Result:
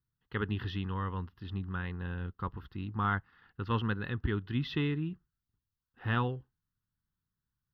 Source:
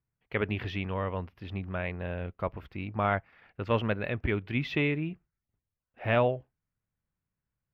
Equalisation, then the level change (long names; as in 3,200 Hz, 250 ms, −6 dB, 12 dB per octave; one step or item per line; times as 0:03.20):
phaser with its sweep stopped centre 2,300 Hz, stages 6
0.0 dB